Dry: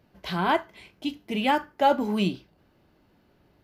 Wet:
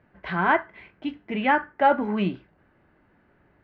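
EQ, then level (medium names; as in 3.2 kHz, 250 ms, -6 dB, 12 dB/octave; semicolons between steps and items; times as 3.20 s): resonant low-pass 1.8 kHz, resonance Q 2.4; 0.0 dB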